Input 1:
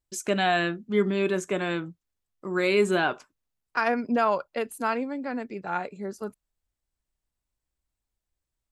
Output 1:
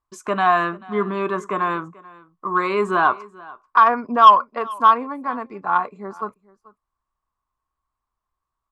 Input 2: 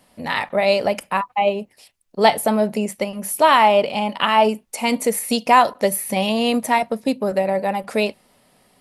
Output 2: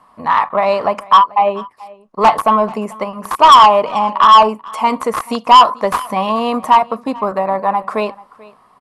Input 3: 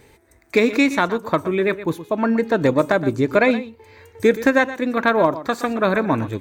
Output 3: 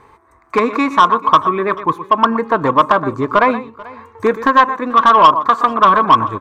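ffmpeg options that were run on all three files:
-filter_complex "[0:a]aemphasis=mode=production:type=75fm,bandreject=f=550:w=14,aeval=exprs='(mod(1.5*val(0)+1,2)-1)/1.5':c=same,crystalizer=i=5.5:c=0,lowpass=f=1.1k:t=q:w=12,asoftclip=type=tanh:threshold=-1.5dB,asplit=2[a][b];[b]aecho=0:1:437:0.0794[c];[a][c]amix=inputs=2:normalize=0"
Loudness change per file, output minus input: +8.0, +6.5, +6.0 LU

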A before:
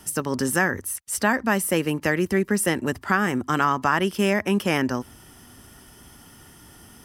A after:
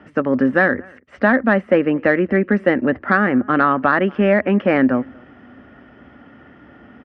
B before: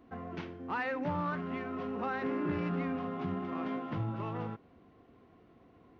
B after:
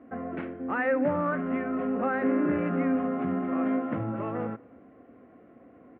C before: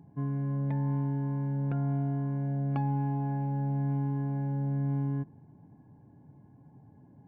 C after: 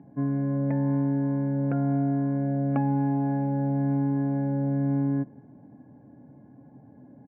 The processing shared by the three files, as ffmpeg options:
-filter_complex "[0:a]highpass=100,equalizer=f=100:t=q:w=4:g=-9,equalizer=f=160:t=q:w=4:g=-8,equalizer=f=260:t=q:w=4:g=4,equalizer=f=390:t=q:w=4:g=-4,equalizer=f=560:t=q:w=4:g=6,equalizer=f=950:t=q:w=4:g=-9,lowpass=f=2.1k:w=0.5412,lowpass=f=2.1k:w=1.3066,asplit=2[a][b];[b]adelay=233.2,volume=-27dB,highshelf=f=4k:g=-5.25[c];[a][c]amix=inputs=2:normalize=0,acontrast=43,volume=2dB"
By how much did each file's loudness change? +6.0, +7.5, +5.0 LU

